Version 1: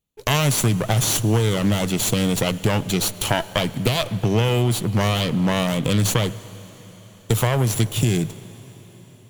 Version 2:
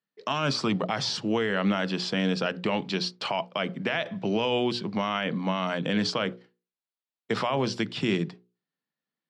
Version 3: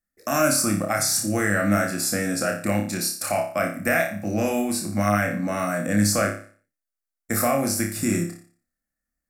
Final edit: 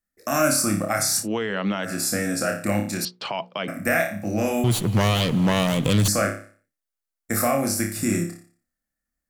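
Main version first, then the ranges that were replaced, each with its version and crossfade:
3
0:01.23–0:01.87: punch in from 2, crossfade 0.10 s
0:03.05–0:03.68: punch in from 2
0:04.64–0:06.08: punch in from 1

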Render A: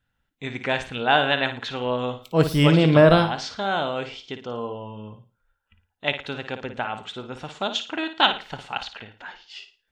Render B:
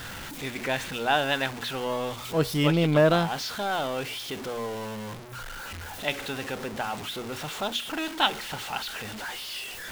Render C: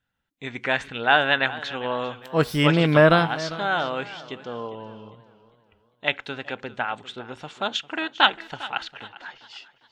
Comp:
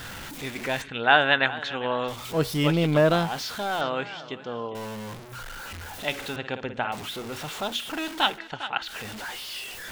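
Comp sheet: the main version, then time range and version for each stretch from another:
B
0:00.82–0:02.08: punch in from C
0:03.81–0:04.75: punch in from C
0:06.36–0:06.92: punch in from A
0:08.32–0:08.89: punch in from C, crossfade 0.16 s

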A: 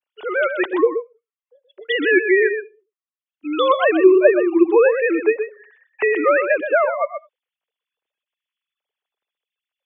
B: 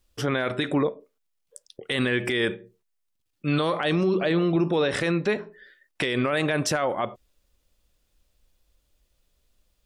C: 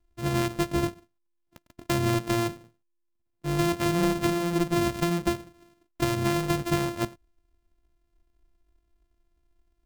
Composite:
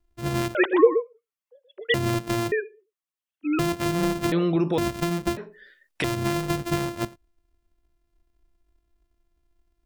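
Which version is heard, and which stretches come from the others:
C
0:00.55–0:01.94: punch in from A
0:02.52–0:03.59: punch in from A
0:04.32–0:04.78: punch in from B
0:05.37–0:06.04: punch in from B

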